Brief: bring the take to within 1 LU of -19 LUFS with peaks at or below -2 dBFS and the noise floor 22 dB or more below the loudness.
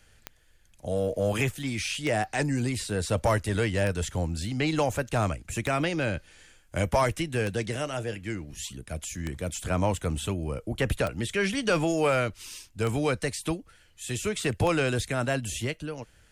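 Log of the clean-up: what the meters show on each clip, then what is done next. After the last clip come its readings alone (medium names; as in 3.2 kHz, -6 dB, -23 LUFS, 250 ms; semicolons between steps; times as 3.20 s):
clicks found 9; loudness -28.5 LUFS; peak level -11.0 dBFS; loudness target -19.0 LUFS
-> de-click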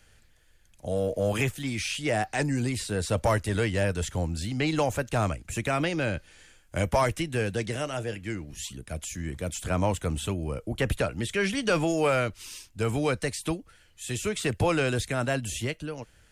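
clicks found 0; loudness -29.0 LUFS; peak level -14.0 dBFS; loudness target -19.0 LUFS
-> trim +10 dB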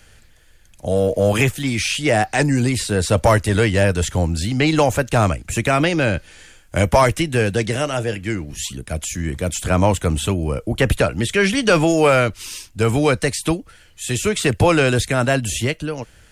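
loudness -19.0 LUFS; peak level -4.0 dBFS; noise floor -49 dBFS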